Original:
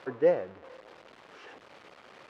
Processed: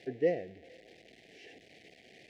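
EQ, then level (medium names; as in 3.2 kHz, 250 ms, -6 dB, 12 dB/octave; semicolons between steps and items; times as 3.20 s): elliptic band-stop 690–1900 Hz, stop band 60 dB; peaking EQ 570 Hz -10.5 dB 0.29 oct; 0.0 dB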